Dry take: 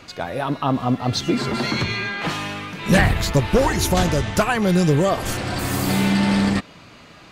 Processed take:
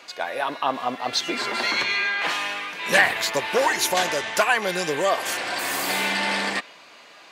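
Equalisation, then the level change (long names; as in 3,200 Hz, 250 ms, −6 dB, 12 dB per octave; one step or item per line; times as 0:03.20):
high-pass filter 550 Hz 12 dB per octave
notch filter 1,300 Hz, Q 11
dynamic equaliser 2,000 Hz, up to +4 dB, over −38 dBFS, Q 0.9
0.0 dB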